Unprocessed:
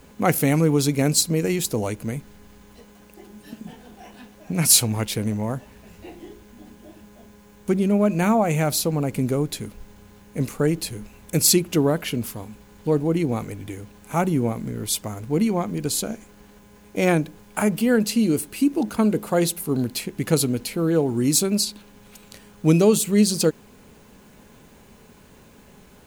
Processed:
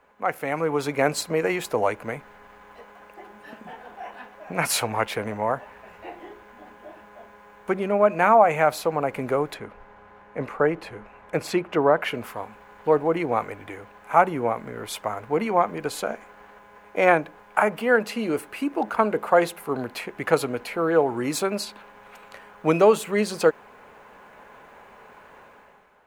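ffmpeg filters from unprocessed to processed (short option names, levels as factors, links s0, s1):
-filter_complex "[0:a]asettb=1/sr,asplit=3[s0][s1][s2];[s0]atrim=end=9.544[s3];[s1]atrim=start=9.54:end=12.02,asetpts=PTS-STARTPTS,afade=t=in:d=0.004:c=qsin,afade=t=out:st=2.476:d=0.004:c=qsin,lowpass=f=2100:p=1[s4];[s2]atrim=start=12.016[s5];[s3][s4]acrossfade=d=0.004:c1=hsin:c2=qsin[s6];[s6][s5]acrossfade=d=0.004:c1=qsin:c2=hsin,acrossover=split=560 2100:gain=0.0794 1 0.0708[s7][s8][s9];[s7][s8][s9]amix=inputs=3:normalize=0,dynaudnorm=f=100:g=11:m=3.98,volume=0.891"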